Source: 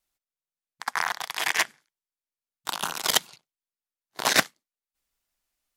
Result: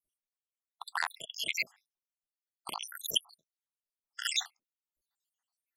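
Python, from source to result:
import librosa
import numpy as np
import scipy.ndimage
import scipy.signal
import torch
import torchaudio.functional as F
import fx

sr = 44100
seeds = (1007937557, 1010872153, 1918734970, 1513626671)

y = fx.spec_dropout(x, sr, seeds[0], share_pct=84)
y = fx.transformer_sat(y, sr, knee_hz=2600.0)
y = F.gain(torch.from_numpy(y), -1.0).numpy()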